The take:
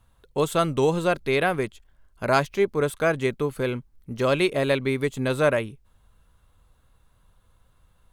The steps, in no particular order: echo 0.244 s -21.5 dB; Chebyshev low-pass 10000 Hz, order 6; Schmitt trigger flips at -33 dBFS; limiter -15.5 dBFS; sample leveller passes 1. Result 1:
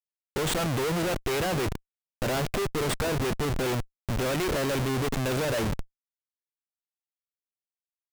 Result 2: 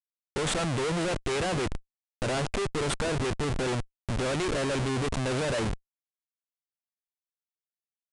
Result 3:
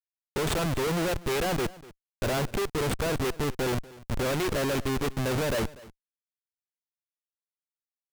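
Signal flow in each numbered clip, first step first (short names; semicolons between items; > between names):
Chebyshev low-pass > limiter > echo > sample leveller > Schmitt trigger; sample leveller > limiter > echo > Schmitt trigger > Chebyshev low-pass; Chebyshev low-pass > limiter > Schmitt trigger > echo > sample leveller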